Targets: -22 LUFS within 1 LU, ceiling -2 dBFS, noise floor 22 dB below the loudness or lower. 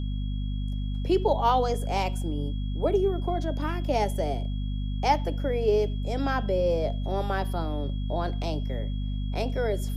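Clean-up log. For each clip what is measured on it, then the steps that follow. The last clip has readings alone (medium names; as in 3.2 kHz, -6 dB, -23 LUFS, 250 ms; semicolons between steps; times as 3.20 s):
hum 50 Hz; highest harmonic 250 Hz; hum level -27 dBFS; steady tone 3.3 kHz; tone level -49 dBFS; loudness -28.0 LUFS; peak level -11.0 dBFS; loudness target -22.0 LUFS
-> de-hum 50 Hz, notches 5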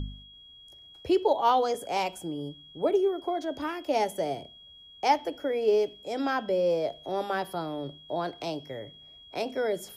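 hum not found; steady tone 3.3 kHz; tone level -49 dBFS
-> band-stop 3.3 kHz, Q 30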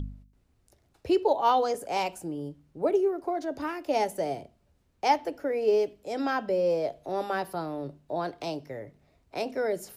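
steady tone not found; loudness -29.0 LUFS; peak level -11.0 dBFS; loudness target -22.0 LUFS
-> trim +7 dB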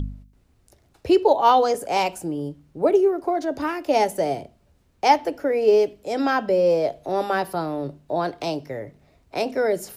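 loudness -22.0 LUFS; peak level -4.0 dBFS; noise floor -61 dBFS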